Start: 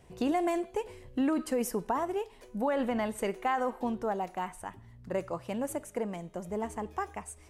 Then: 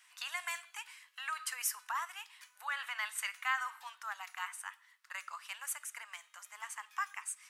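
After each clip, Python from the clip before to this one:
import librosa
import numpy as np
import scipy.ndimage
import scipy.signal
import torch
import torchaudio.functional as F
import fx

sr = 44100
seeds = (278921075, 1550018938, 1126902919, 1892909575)

y = scipy.signal.sosfilt(scipy.signal.butter(6, 1200.0, 'highpass', fs=sr, output='sos'), x)
y = F.gain(torch.from_numpy(y), 4.5).numpy()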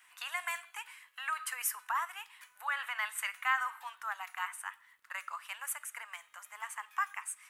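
y = fx.peak_eq(x, sr, hz=5200.0, db=-10.5, octaves=1.3)
y = fx.dmg_crackle(y, sr, seeds[0], per_s=58.0, level_db=-66.0)
y = F.gain(torch.from_numpy(y), 4.5).numpy()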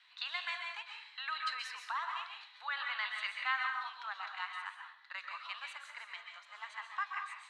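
y = fx.ladder_lowpass(x, sr, hz=4200.0, resonance_pct=85)
y = fx.rev_plate(y, sr, seeds[1], rt60_s=0.6, hf_ratio=0.75, predelay_ms=115, drr_db=2.5)
y = F.gain(torch.from_numpy(y), 7.5).numpy()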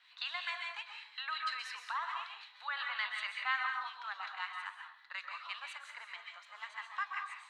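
y = fx.harmonic_tremolo(x, sr, hz=5.5, depth_pct=50, crossover_hz=1400.0)
y = F.gain(torch.from_numpy(y), 2.5).numpy()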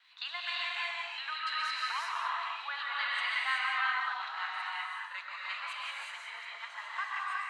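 y = fx.vibrato(x, sr, rate_hz=4.4, depth_cents=32.0)
y = fx.rev_gated(y, sr, seeds[2], gate_ms=400, shape='rising', drr_db=-4.0)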